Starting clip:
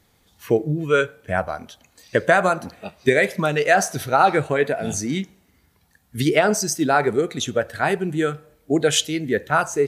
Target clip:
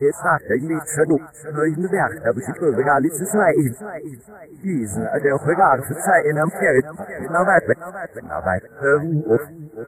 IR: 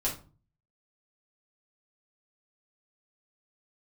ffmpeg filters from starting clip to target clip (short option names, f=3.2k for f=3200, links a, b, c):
-af "areverse,acontrast=31,asuperstop=centerf=4000:order=20:qfactor=0.74,aecho=1:1:470|940|1410:0.158|0.0491|0.0152,volume=-2.5dB"